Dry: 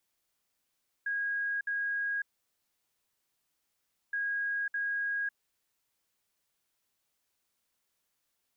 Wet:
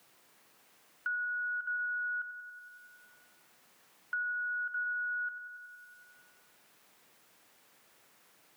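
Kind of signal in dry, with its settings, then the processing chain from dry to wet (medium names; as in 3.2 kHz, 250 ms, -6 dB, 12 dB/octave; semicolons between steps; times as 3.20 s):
beep pattern sine 1.64 kHz, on 0.55 s, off 0.06 s, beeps 2, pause 1.91 s, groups 2, -29.5 dBFS
every band turned upside down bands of 1 kHz; on a send: feedback echo behind a high-pass 93 ms, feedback 62%, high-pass 1.5 kHz, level -10.5 dB; on the sum: three bands compressed up and down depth 70%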